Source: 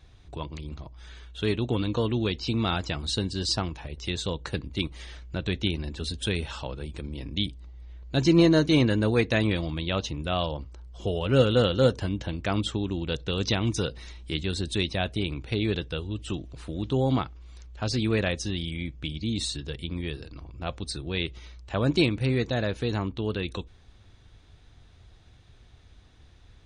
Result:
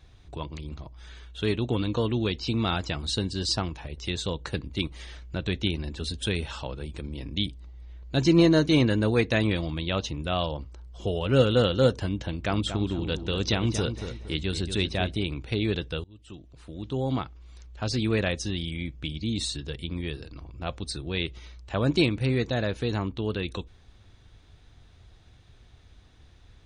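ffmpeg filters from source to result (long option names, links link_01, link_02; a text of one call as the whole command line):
ffmpeg -i in.wav -filter_complex "[0:a]asettb=1/sr,asplit=3[link_01][link_02][link_03];[link_01]atrim=end=12.194[link_04];[link_02]atrim=start=12.19:end=15.16,asetpts=PTS-STARTPTS,afade=type=in:duration=0.004:curve=qsin,afade=type=out:start_time=2.966:duration=0.004:curve=qsin,asplit=2[link_05][link_06];[link_06]adelay=232,lowpass=frequency=2000:poles=1,volume=-8dB,asplit=2[link_07][link_08];[link_08]adelay=232,lowpass=frequency=2000:poles=1,volume=0.34,asplit=2[link_09][link_10];[link_10]adelay=232,lowpass=frequency=2000:poles=1,volume=0.34,asplit=2[link_11][link_12];[link_12]adelay=232,lowpass=frequency=2000:poles=1,volume=0.34[link_13];[link_05][link_07][link_09][link_11][link_13]amix=inputs=5:normalize=0,atrim=end_sample=130977[link_14];[link_03]atrim=start=15.156[link_15];[link_04][link_14]acrossfade=duration=0.004:curve1=hsin:curve2=qsin[link_16];[link_16][link_15]acrossfade=duration=0.004:curve1=qsin:curve2=hsin,asplit=2[link_17][link_18];[link_17]atrim=end=16.04,asetpts=PTS-STARTPTS,afade=type=out:start_time=16.036:duration=0.004:curve=hsin:silence=0.0707946[link_19];[link_18]atrim=start=16.04,asetpts=PTS-STARTPTS,afade=type=in:duration=2.37:curve=qsin:silence=0.0707946[link_20];[link_19][link_20]concat=n=2:v=0:a=1" out.wav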